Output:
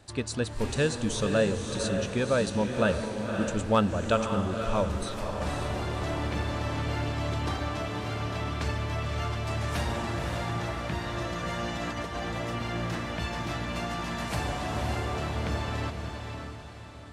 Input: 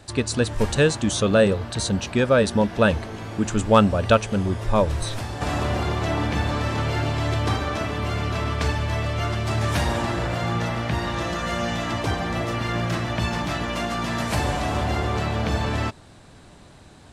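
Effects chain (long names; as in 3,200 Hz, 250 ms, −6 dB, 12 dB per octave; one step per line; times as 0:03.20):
0:11.76–0:12.30: compressor whose output falls as the input rises −27 dBFS, ratio −0.5
feedback delay with all-pass diffusion 545 ms, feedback 45%, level −5.5 dB
level −8 dB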